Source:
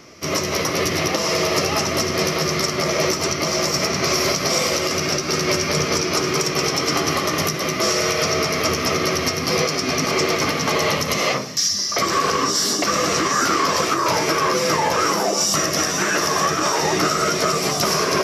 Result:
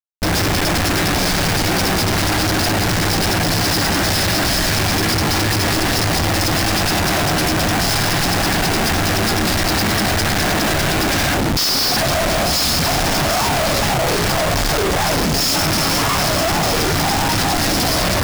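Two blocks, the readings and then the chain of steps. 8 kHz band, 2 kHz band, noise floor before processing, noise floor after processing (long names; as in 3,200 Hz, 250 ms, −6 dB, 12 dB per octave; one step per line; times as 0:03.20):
+0.5 dB, +4.0 dB, −25 dBFS, −17 dBFS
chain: frequency shifter −470 Hz
comparator with hysteresis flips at −30 dBFS
level +3.5 dB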